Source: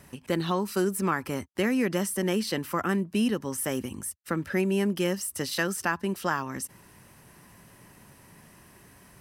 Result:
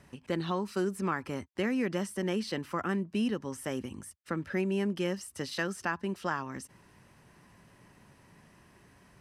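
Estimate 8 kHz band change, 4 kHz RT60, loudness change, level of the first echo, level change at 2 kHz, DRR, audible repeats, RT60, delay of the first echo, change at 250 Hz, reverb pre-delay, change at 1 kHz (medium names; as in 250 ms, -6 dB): -11.5 dB, no reverb, -5.0 dB, no echo, -5.0 dB, no reverb, no echo, no reverb, no echo, -4.5 dB, no reverb, -5.0 dB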